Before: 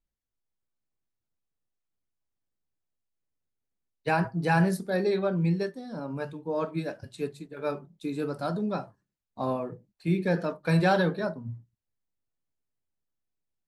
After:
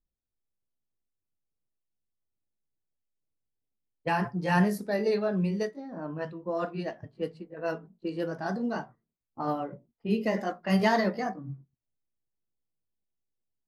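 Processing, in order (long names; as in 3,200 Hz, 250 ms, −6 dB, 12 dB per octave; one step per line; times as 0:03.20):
pitch glide at a constant tempo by +3.5 semitones starting unshifted
low-pass that shuts in the quiet parts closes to 650 Hz, open at −25.5 dBFS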